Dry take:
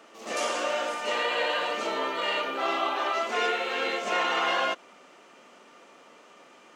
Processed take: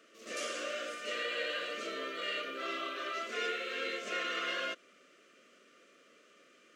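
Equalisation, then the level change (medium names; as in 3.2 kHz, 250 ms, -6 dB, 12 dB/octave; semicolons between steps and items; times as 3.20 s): Butterworth band-stop 860 Hz, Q 1.3; bass shelf 130 Hz -9 dB; -7.0 dB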